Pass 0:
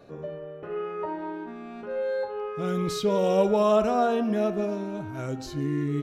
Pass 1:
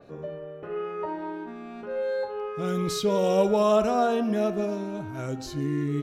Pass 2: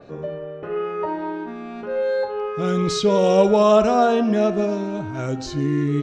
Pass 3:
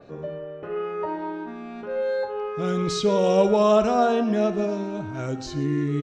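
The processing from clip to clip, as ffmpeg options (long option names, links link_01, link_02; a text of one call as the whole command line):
ffmpeg -i in.wav -af "adynamicequalizer=threshold=0.00631:dfrequency=3900:dqfactor=0.7:tfrequency=3900:tqfactor=0.7:attack=5:release=100:ratio=0.375:range=2:mode=boostabove:tftype=highshelf" out.wav
ffmpeg -i in.wav -af "lowpass=frequency=7300:width=0.5412,lowpass=frequency=7300:width=1.3066,volume=6.5dB" out.wav
ffmpeg -i in.wav -af "aecho=1:1:119:0.133,volume=-3.5dB" out.wav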